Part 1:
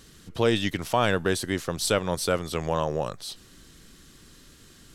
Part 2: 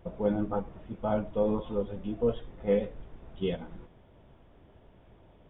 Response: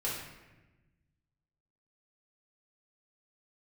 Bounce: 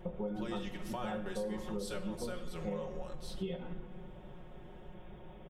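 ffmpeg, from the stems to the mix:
-filter_complex "[0:a]agate=range=-23dB:threshold=-46dB:ratio=16:detection=peak,volume=-14dB,asplit=2[a][b];[b]volume=-8.5dB[c];[1:a]acompressor=threshold=-29dB:ratio=6,volume=1.5dB,asplit=2[d][e];[e]volume=-12dB[f];[2:a]atrim=start_sample=2205[g];[c][f]amix=inputs=2:normalize=0[h];[h][g]afir=irnorm=-1:irlink=0[i];[a][d][i]amix=inputs=3:normalize=0,aecho=1:1:5.5:0.93,acompressor=threshold=-39dB:ratio=3"

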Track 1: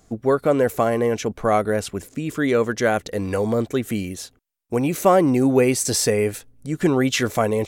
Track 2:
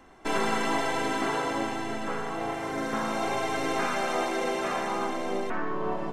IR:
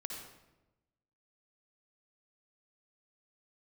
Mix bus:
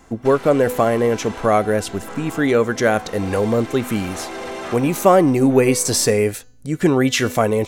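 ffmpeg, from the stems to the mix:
-filter_complex "[0:a]bandreject=f=249.2:t=h:w=4,bandreject=f=498.4:t=h:w=4,bandreject=f=747.6:t=h:w=4,bandreject=f=996.8:t=h:w=4,bandreject=f=1.246k:t=h:w=4,bandreject=f=1.4952k:t=h:w=4,bandreject=f=1.7444k:t=h:w=4,bandreject=f=1.9936k:t=h:w=4,bandreject=f=2.2428k:t=h:w=4,bandreject=f=2.492k:t=h:w=4,bandreject=f=2.7412k:t=h:w=4,bandreject=f=2.9904k:t=h:w=4,bandreject=f=3.2396k:t=h:w=4,bandreject=f=3.4888k:t=h:w=4,bandreject=f=3.738k:t=h:w=4,bandreject=f=3.9872k:t=h:w=4,bandreject=f=4.2364k:t=h:w=4,bandreject=f=4.4856k:t=h:w=4,bandreject=f=4.7348k:t=h:w=4,bandreject=f=4.984k:t=h:w=4,bandreject=f=5.2332k:t=h:w=4,bandreject=f=5.4824k:t=h:w=4,bandreject=f=5.7316k:t=h:w=4,bandreject=f=5.9808k:t=h:w=4,bandreject=f=6.23k:t=h:w=4,bandreject=f=6.4792k:t=h:w=4,bandreject=f=6.7284k:t=h:w=4,bandreject=f=6.9776k:t=h:w=4,bandreject=f=7.2268k:t=h:w=4,bandreject=f=7.476k:t=h:w=4,volume=3dB,asplit=2[a][b];[1:a]aeval=exprs='0.2*sin(PI/2*3.16*val(0)/0.2)':c=same,volume=-11dB[c];[b]apad=whole_len=270126[d];[c][d]sidechaincompress=threshold=-18dB:ratio=8:attack=8.9:release=1130[e];[a][e]amix=inputs=2:normalize=0"

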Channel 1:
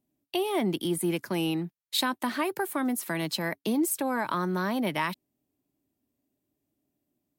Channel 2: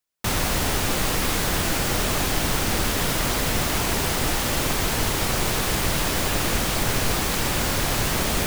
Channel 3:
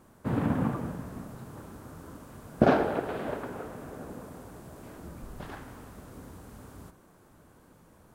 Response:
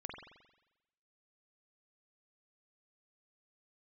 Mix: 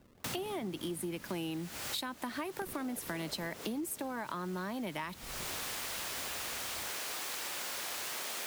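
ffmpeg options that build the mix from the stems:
-filter_complex "[0:a]volume=1.5dB,asplit=2[a][b];[1:a]highpass=420,tiltshelf=f=970:g=-3.5,volume=-11.5dB[c];[2:a]acompressor=threshold=-32dB:ratio=6,acrusher=samples=33:mix=1:aa=0.000001:lfo=1:lforange=52.8:lforate=2.7,volume=-5dB[d];[b]apad=whole_len=373245[e];[c][e]sidechaincompress=threshold=-35dB:ratio=12:attack=28:release=534[f];[a][f][d]amix=inputs=3:normalize=0,acompressor=threshold=-36dB:ratio=6"

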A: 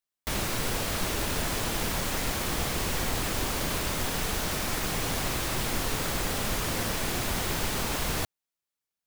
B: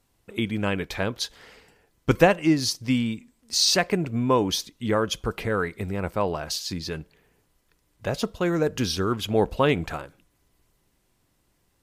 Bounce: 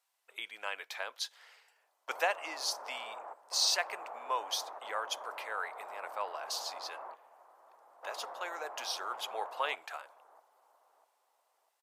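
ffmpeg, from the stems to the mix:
-filter_complex "[0:a]lowpass=f=1k:w=0.5412,lowpass=f=1k:w=1.3066,adelay=1500,volume=-3.5dB,asplit=2[a][b];[b]volume=-16dB[c];[1:a]volume=-8dB,asplit=2[d][e];[e]apad=whole_len=465761[f];[a][f]sidechaingate=range=-33dB:threshold=-57dB:ratio=16:detection=peak[g];[c]aecho=0:1:647|1294|1941|2588|3235|3882:1|0.4|0.16|0.064|0.0256|0.0102[h];[g][d][h]amix=inputs=3:normalize=0,highpass=f=690:w=0.5412,highpass=f=690:w=1.3066"

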